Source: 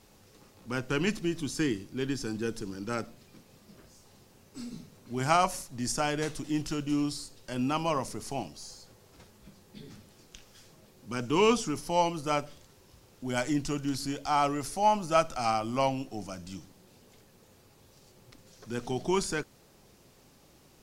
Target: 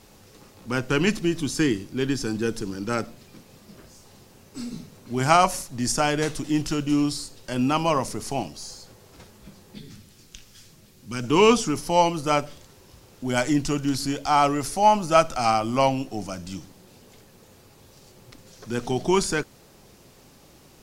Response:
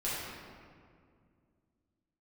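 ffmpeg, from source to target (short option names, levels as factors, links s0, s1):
-filter_complex "[0:a]asettb=1/sr,asplit=3[s0][s1][s2];[s0]atrim=end=9.794[s3];[s1]atrim=start=9.79:end=11.24,asetpts=PTS-STARTPTS,afade=t=in:d=0.004:c=qsin,afade=t=out:st=1.446:d=0.004:c=qsin,equalizer=f=670:t=o:w=2.3:g=-9.5[s4];[s2]atrim=start=11.236[s5];[s3][s4]acrossfade=d=0.004:c1=hsin:c2=qsin[s6];[s6][s5]acrossfade=d=0.004:c1=qsin:c2=hsin,volume=2.24"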